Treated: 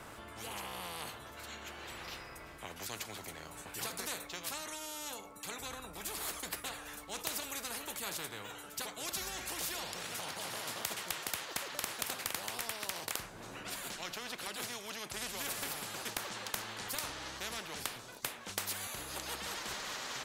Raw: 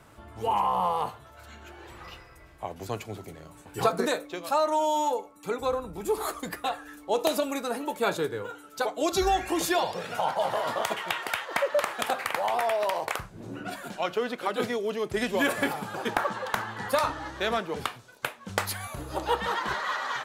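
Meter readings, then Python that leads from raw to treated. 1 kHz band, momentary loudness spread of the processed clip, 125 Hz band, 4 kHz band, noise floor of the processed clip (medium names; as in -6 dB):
-16.5 dB, 8 LU, -11.5 dB, -4.0 dB, -51 dBFS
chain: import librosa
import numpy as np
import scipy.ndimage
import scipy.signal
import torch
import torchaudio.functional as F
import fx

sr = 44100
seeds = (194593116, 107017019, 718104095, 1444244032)

y = fx.spectral_comp(x, sr, ratio=4.0)
y = y * librosa.db_to_amplitude(-5.0)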